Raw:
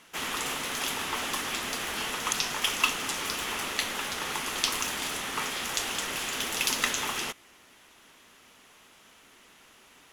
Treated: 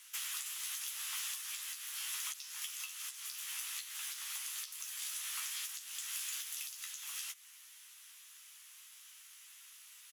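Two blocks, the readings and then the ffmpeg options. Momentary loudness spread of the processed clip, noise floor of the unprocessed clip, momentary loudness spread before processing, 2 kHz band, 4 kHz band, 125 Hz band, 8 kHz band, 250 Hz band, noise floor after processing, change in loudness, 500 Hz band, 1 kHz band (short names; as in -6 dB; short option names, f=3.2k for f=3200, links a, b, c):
16 LU, -57 dBFS, 5 LU, -16.0 dB, -12.5 dB, under -40 dB, -6.5 dB, under -40 dB, -57 dBFS, -10.5 dB, under -40 dB, -22.5 dB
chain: -filter_complex "[0:a]highpass=f=1k:w=0.5412,highpass=f=1k:w=1.3066,aderivative,acompressor=threshold=-41dB:ratio=8,alimiter=level_in=7.5dB:limit=-24dB:level=0:latency=1:release=389,volume=-7.5dB,asplit=2[a][b];[b]adelay=14,volume=-5dB[c];[a][c]amix=inputs=2:normalize=0,volume=3.5dB"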